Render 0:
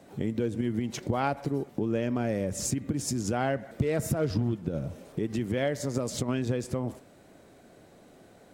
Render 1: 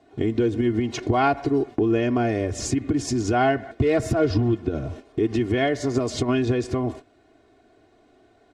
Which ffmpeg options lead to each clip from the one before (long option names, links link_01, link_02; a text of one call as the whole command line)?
ffmpeg -i in.wav -af "lowpass=5000,agate=range=-11dB:threshold=-43dB:ratio=16:detection=peak,aecho=1:1:2.8:0.86,volume=6dB" out.wav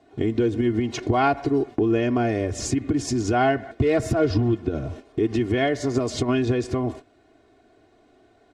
ffmpeg -i in.wav -af anull out.wav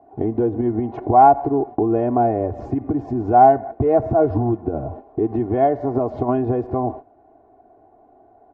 ffmpeg -i in.wav -af "lowpass=frequency=820:width_type=q:width=4.9" out.wav